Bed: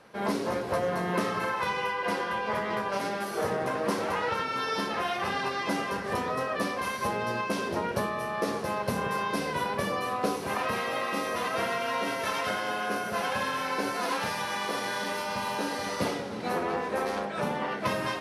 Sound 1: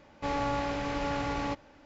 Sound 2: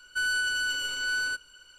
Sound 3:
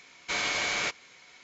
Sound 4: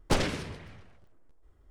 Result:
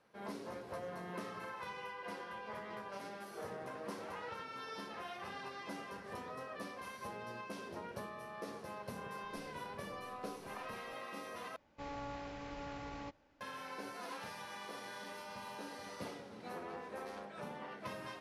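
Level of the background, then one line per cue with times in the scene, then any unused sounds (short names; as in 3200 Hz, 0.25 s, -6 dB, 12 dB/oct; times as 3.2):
bed -16 dB
9.24 add 4 -14 dB + compressor 4:1, threshold -46 dBFS
11.56 replace with 1 -14 dB
not used: 2, 3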